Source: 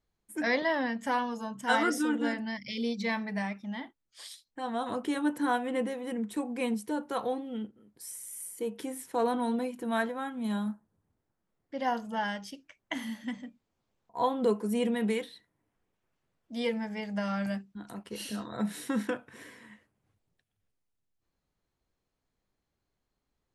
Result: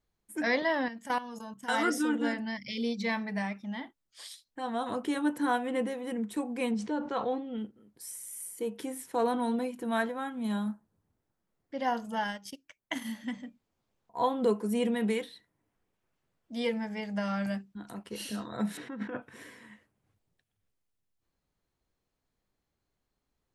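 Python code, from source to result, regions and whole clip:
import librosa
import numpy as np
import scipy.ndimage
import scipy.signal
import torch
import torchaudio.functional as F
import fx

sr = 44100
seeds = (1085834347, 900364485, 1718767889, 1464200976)

y = fx.chain(x, sr, fx.high_shelf(hz=6800.0, db=9.5),
    fx.level_steps(step_db=14), at=(0.88, 1.85))
y = fx.chain(y, sr, fx.bessel_lowpass(hz=4400.0, order=6),
    fx.sustainer(db_per_s=90.0), at=(6.71, 7.58))
y = fx.chain(y, sr, fx.high_shelf(hz=8200.0, db=11.0),
    fx.transient(attack_db=0, sustain_db=-11), at=(12.04, 13.12))
y = fx.chain(y, sr, fx.lowpass(hz=2100.0, slope=12),
    fx.over_compress(threshold_db=-37.0, ratio=-1.0), at=(18.77, 19.22))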